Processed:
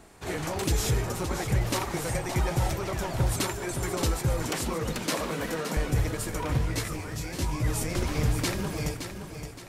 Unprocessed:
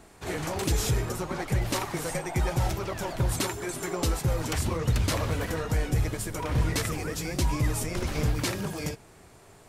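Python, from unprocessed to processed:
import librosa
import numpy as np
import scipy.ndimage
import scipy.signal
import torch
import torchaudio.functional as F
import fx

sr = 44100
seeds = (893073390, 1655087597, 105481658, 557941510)

y = fx.steep_highpass(x, sr, hz=150.0, slope=96, at=(4.5, 5.77))
y = fx.echo_feedback(y, sr, ms=569, feedback_pct=39, wet_db=-8.5)
y = fx.detune_double(y, sr, cents=fx.line((6.57, 46.0), (7.66, 34.0)), at=(6.57, 7.66), fade=0.02)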